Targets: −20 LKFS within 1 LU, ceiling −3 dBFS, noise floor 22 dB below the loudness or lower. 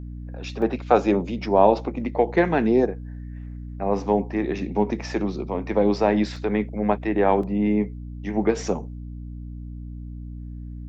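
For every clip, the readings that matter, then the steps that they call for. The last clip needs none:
number of dropouts 3; longest dropout 3.6 ms; mains hum 60 Hz; hum harmonics up to 300 Hz; level of the hum −33 dBFS; integrated loudness −23.0 LKFS; sample peak −3.0 dBFS; target loudness −20.0 LKFS
→ repair the gap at 0:00.62/0:06.36/0:07.43, 3.6 ms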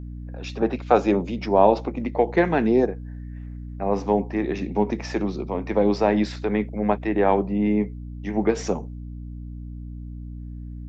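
number of dropouts 0; mains hum 60 Hz; hum harmonics up to 300 Hz; level of the hum −33 dBFS
→ hum removal 60 Hz, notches 5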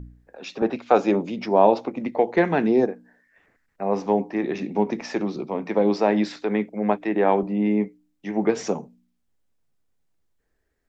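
mains hum none found; integrated loudness −23.0 LKFS; sample peak −3.0 dBFS; target loudness −20.0 LKFS
→ level +3 dB
brickwall limiter −3 dBFS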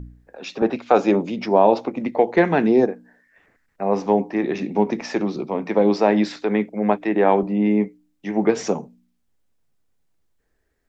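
integrated loudness −20.5 LKFS; sample peak −3.0 dBFS; background noise floor −69 dBFS

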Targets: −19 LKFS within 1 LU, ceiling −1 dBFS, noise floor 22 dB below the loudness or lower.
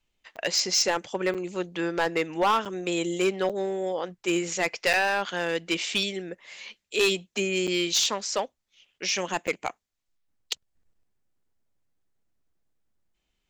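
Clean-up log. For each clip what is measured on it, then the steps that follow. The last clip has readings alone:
share of clipped samples 0.5%; peaks flattened at −17.0 dBFS; number of dropouts 7; longest dropout 6.7 ms; integrated loudness −27.0 LKFS; sample peak −17.0 dBFS; target loudness −19.0 LKFS
→ clipped peaks rebuilt −17 dBFS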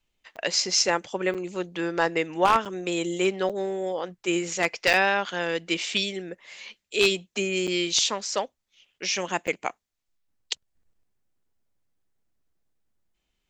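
share of clipped samples 0.0%; number of dropouts 7; longest dropout 6.7 ms
→ repair the gap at 0:00.36/0:01.34/0:02.65/0:03.49/0:04.93/0:07.67/0:09.47, 6.7 ms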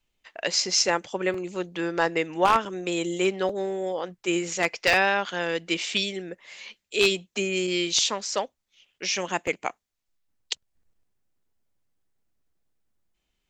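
number of dropouts 0; integrated loudness −25.5 LKFS; sample peak −8.0 dBFS; target loudness −19.0 LKFS
→ level +6.5 dB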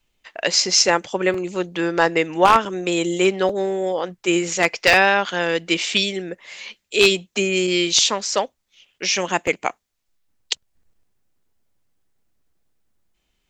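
integrated loudness −19.0 LKFS; sample peak −1.5 dBFS; background noise floor −72 dBFS

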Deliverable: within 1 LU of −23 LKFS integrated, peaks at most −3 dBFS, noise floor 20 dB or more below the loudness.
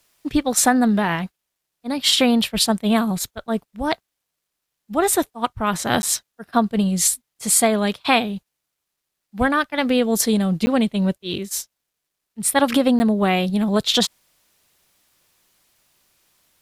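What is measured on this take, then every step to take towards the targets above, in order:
number of dropouts 3; longest dropout 10 ms; integrated loudness −20.0 LKFS; sample peak −3.0 dBFS; target loudness −23.0 LKFS
→ repair the gap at 0:06.02/0:10.66/0:12.99, 10 ms
level −3 dB

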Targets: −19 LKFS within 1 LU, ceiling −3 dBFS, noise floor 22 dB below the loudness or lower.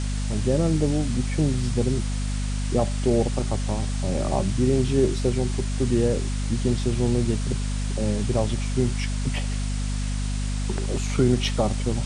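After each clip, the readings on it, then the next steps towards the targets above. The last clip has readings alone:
mains hum 50 Hz; hum harmonics up to 250 Hz; level of the hum −24 dBFS; background noise floor −26 dBFS; target noise floor −47 dBFS; integrated loudness −25.0 LKFS; sample peak −8.0 dBFS; target loudness −19.0 LKFS
→ hum removal 50 Hz, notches 5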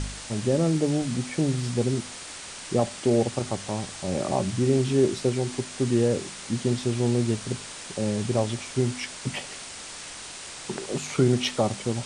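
mains hum none found; background noise floor −40 dBFS; target noise floor −49 dBFS
→ broadband denoise 9 dB, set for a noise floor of −40 dBFS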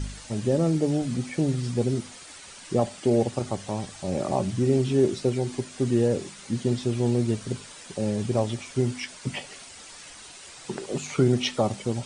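background noise floor −45 dBFS; target noise floor −49 dBFS
→ broadband denoise 6 dB, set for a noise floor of −45 dBFS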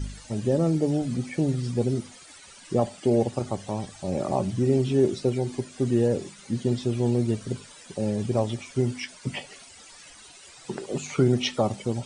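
background noise floor −49 dBFS; integrated loudness −26.5 LKFS; sample peak −9.5 dBFS; target loudness −19.0 LKFS
→ level +7.5 dB
brickwall limiter −3 dBFS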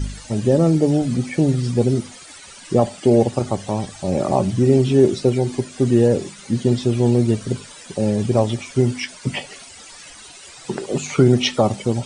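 integrated loudness −19.0 LKFS; sample peak −3.0 dBFS; background noise floor −41 dBFS

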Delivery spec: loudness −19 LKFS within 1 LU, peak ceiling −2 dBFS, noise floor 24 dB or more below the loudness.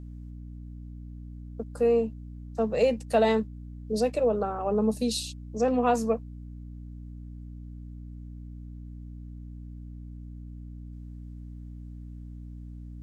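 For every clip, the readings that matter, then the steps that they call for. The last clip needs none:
mains hum 60 Hz; hum harmonics up to 300 Hz; level of the hum −39 dBFS; integrated loudness −27.0 LKFS; sample peak −11.5 dBFS; target loudness −19.0 LKFS
→ hum removal 60 Hz, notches 5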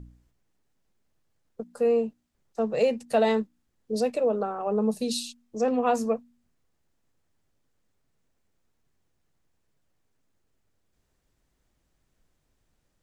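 mains hum none found; integrated loudness −26.5 LKFS; sample peak −12.0 dBFS; target loudness −19.0 LKFS
→ level +7.5 dB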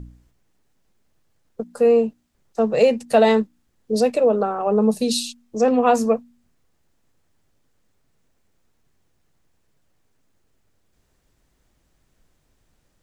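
integrated loudness −19.5 LKFS; sample peak −4.5 dBFS; background noise floor −67 dBFS

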